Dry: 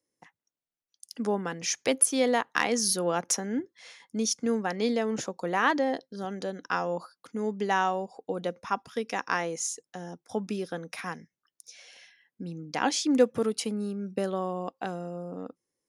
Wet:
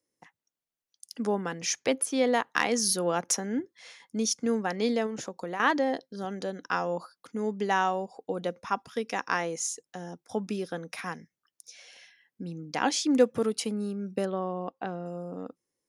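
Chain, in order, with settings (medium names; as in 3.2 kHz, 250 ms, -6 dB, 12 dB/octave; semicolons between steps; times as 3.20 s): 1.79–2.34 s: treble shelf 6.1 kHz -10.5 dB; 5.06–5.60 s: compression 5:1, threshold -32 dBFS, peak gain reduction 10 dB; 14.25–15.06 s: distance through air 220 m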